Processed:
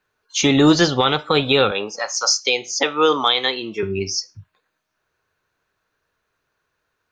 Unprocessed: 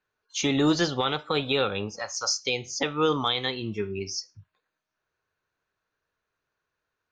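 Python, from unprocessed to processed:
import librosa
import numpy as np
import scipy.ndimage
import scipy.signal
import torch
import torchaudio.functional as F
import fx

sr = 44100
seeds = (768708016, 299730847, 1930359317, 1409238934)

y = fx.highpass(x, sr, hz=360.0, slope=12, at=(1.71, 3.83))
y = y * librosa.db_to_amplitude(9.0)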